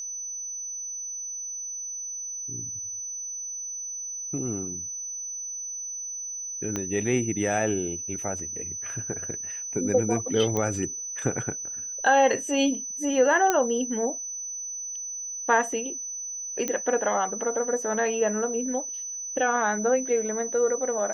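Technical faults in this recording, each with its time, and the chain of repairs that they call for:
whine 6 kHz -32 dBFS
6.76 s: pop -15 dBFS
10.57 s: pop -14 dBFS
13.50 s: pop -8 dBFS
16.68 s: pop -13 dBFS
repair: de-click; band-stop 6 kHz, Q 30

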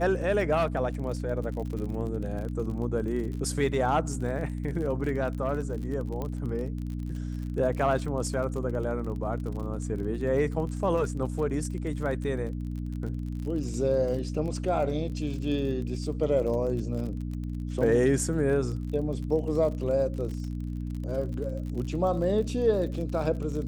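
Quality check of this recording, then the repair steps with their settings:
crackle 40 per s -35 dBFS
hum 60 Hz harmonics 5 -33 dBFS
6.22 s: pop -21 dBFS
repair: de-click; de-hum 60 Hz, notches 5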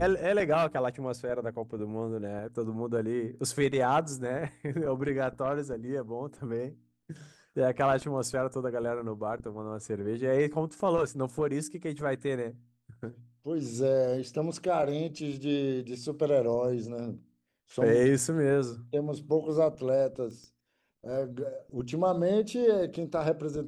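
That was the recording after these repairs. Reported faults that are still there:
nothing left

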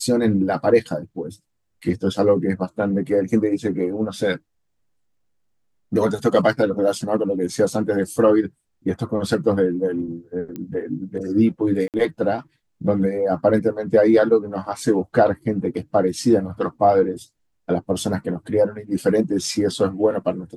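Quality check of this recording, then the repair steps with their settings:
10.56 s: pop -19 dBFS
11.88–11.94 s: dropout 58 ms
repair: de-click; interpolate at 11.88 s, 58 ms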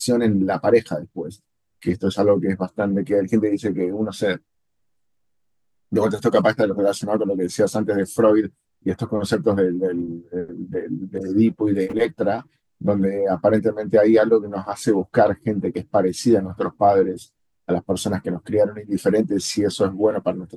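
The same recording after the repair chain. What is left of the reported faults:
nothing left

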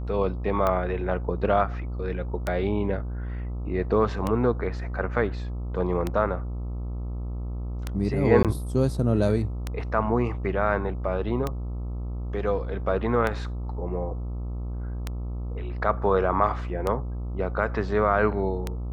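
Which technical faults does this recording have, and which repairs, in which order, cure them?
buzz 60 Hz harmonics 22 -31 dBFS
tick 33 1/3 rpm -13 dBFS
8.43–8.45 s: dropout 17 ms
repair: de-click; de-hum 60 Hz, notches 22; interpolate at 8.43 s, 17 ms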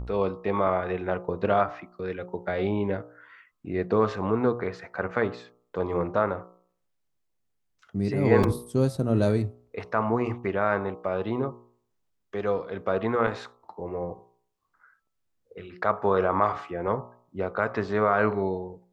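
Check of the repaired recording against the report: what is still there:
nothing left

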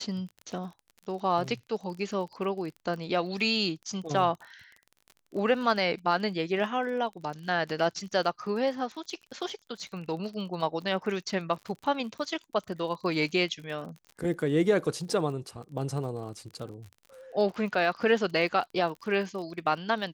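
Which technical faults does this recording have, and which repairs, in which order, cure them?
crackle 34 per s -38 dBFS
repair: de-click

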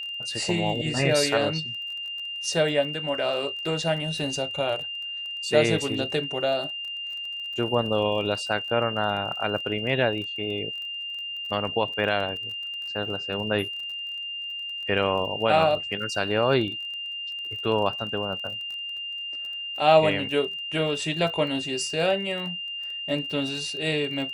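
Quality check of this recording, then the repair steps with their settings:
crackle 25 per s -35 dBFS
whine 2.8 kHz -31 dBFS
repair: de-click; band-stop 2.8 kHz, Q 30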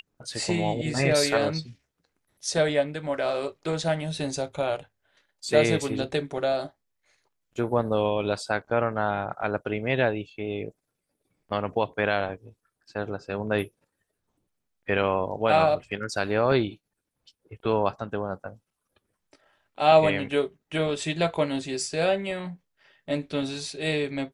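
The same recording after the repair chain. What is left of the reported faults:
nothing left

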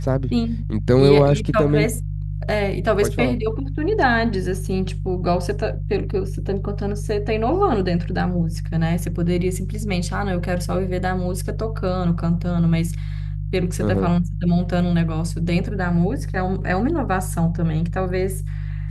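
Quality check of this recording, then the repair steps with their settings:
hum 50 Hz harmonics 3 -26 dBFS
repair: de-hum 50 Hz, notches 3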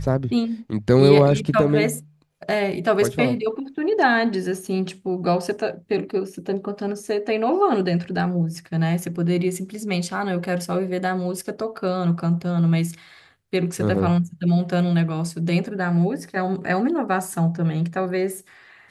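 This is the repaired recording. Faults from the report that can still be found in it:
nothing left

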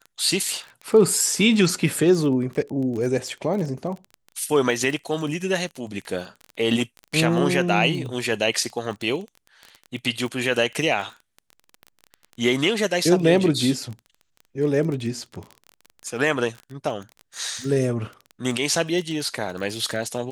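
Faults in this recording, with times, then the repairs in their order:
crackle 20 per s -29 dBFS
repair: de-click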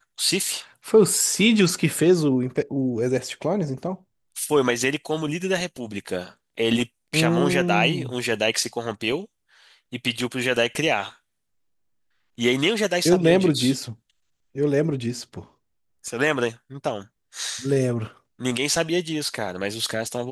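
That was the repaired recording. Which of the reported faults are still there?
nothing left

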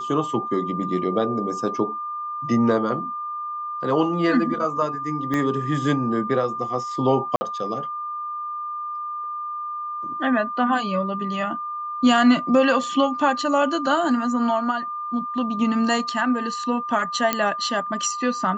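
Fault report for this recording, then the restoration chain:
whine 1.2 kHz -27 dBFS
5.34 s: pop -13 dBFS
7.36–7.41 s: dropout 50 ms
17.33 s: pop -5 dBFS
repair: de-click; band-stop 1.2 kHz, Q 30; interpolate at 7.36 s, 50 ms

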